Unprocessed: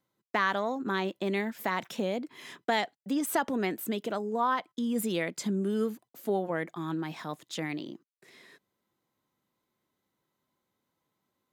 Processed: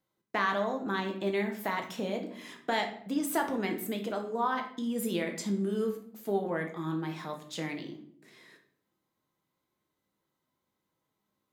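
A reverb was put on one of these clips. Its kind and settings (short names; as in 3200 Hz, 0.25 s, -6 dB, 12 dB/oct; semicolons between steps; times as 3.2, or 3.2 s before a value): shoebox room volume 88 m³, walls mixed, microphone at 0.56 m; gain -3 dB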